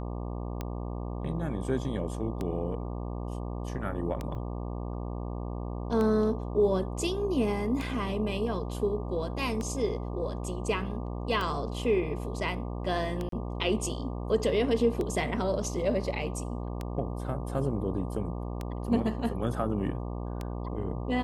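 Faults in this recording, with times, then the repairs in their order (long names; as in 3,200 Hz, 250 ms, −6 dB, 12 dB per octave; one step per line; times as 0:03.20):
mains buzz 60 Hz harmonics 20 −35 dBFS
scratch tick 33 1/3 rpm −20 dBFS
0:04.35: drop-out 3.1 ms
0:13.29–0:13.32: drop-out 33 ms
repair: click removal
hum removal 60 Hz, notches 20
repair the gap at 0:04.35, 3.1 ms
repair the gap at 0:13.29, 33 ms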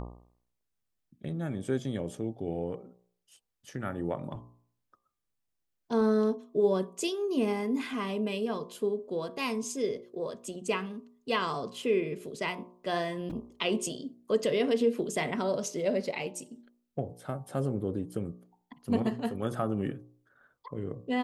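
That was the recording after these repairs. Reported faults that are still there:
none of them is left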